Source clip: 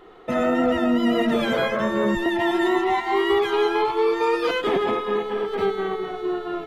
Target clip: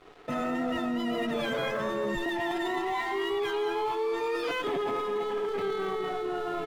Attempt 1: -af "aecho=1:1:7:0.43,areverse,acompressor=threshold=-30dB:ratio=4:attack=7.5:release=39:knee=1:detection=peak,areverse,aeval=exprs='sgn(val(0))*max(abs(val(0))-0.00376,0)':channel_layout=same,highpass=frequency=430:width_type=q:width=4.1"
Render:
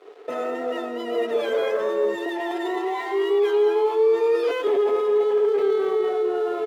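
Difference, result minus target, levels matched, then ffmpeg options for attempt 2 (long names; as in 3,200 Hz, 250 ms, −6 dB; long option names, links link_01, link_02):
500 Hz band +3.0 dB
-af "aecho=1:1:7:0.43,areverse,acompressor=threshold=-30dB:ratio=4:attack=7.5:release=39:knee=1:detection=peak,areverse,aeval=exprs='sgn(val(0))*max(abs(val(0))-0.00376,0)':channel_layout=same"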